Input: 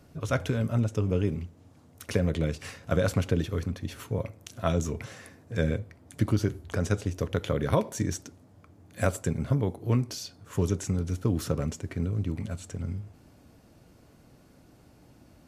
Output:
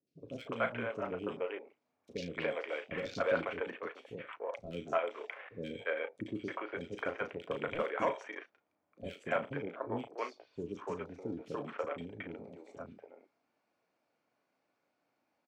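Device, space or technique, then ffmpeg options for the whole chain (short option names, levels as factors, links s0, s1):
megaphone: -filter_complex "[0:a]highpass=500,lowpass=3800,equalizer=f=2300:t=o:w=0.28:g=8,asoftclip=type=hard:threshold=0.0668,asplit=2[s0][s1];[s1]adelay=35,volume=0.355[s2];[s0][s2]amix=inputs=2:normalize=0,afwtdn=0.00631,asettb=1/sr,asplit=3[s3][s4][s5];[s3]atrim=end=3.604[s6];[s4]atrim=start=3.6:end=4.08,asetpts=PTS-STARTPTS,afade=t=in:d=0.004:c=qsin,afade=t=out:st=0.476:d=0.004:c=qsin,highpass=f=220:p=1[s7];[s5]atrim=start=4.076[s8];[s6][s7]acrossfade=d=0.004:c1=hsin:c2=qsin[s9];[s9][s8]acrossfade=d=0.004:c1=qsin:c2=hsin,equalizer=f=2200:t=o:w=0.77:g=-2,acrossover=split=400|3100[s10][s11][s12];[s12]adelay=70[s13];[s11]adelay=290[s14];[s10][s14][s13]amix=inputs=3:normalize=0,volume=1.12"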